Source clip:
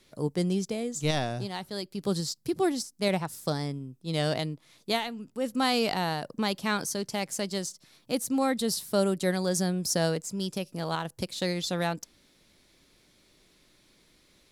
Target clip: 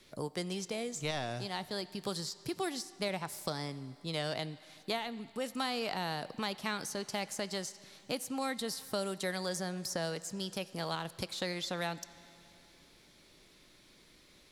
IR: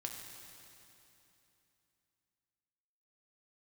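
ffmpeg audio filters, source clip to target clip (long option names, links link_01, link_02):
-filter_complex "[0:a]acrossover=split=640|2000[link_01][link_02][link_03];[link_01]acompressor=threshold=-41dB:ratio=4[link_04];[link_02]acompressor=threshold=-41dB:ratio=4[link_05];[link_03]acompressor=threshold=-41dB:ratio=4[link_06];[link_04][link_05][link_06]amix=inputs=3:normalize=0,asplit=2[link_07][link_08];[link_08]highpass=frequency=480:poles=1[link_09];[1:a]atrim=start_sample=2205,lowpass=7100[link_10];[link_09][link_10]afir=irnorm=-1:irlink=0,volume=-8dB[link_11];[link_07][link_11]amix=inputs=2:normalize=0"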